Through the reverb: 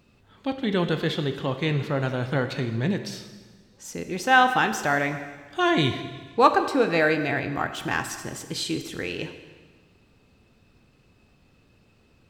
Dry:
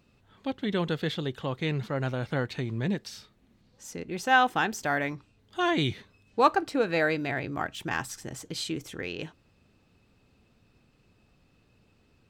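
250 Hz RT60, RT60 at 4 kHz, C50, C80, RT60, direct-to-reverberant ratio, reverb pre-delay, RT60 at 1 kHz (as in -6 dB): 1.5 s, 1.4 s, 9.0 dB, 10.5 dB, 1.5 s, 7.5 dB, 8 ms, 1.5 s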